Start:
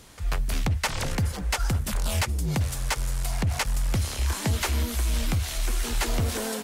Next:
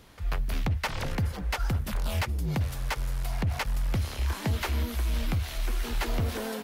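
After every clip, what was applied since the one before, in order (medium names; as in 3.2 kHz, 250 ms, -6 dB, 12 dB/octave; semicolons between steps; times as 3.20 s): peaking EQ 8 kHz -10.5 dB 1.2 oct; trim -2.5 dB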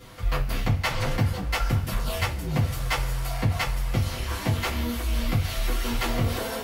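gain riding 0.5 s; two-slope reverb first 0.2 s, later 1.5 s, from -20 dB, DRR -8 dB; trim -3.5 dB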